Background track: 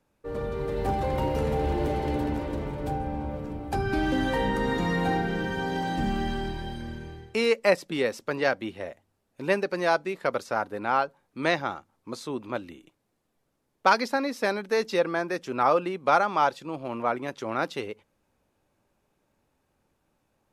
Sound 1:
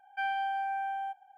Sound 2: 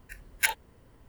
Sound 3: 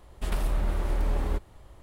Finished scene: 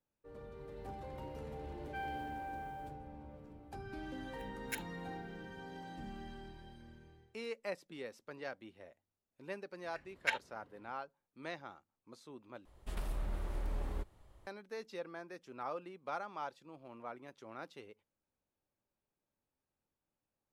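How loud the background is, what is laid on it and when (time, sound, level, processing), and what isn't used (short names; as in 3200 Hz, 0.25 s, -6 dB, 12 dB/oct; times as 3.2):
background track -19.5 dB
1.76 add 1 -11.5 dB + modulation noise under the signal 30 dB
4.29 add 2 -16.5 dB
9.84 add 2 -6.5 dB + BPF 110–3700 Hz
12.65 replace with 3 -11.5 dB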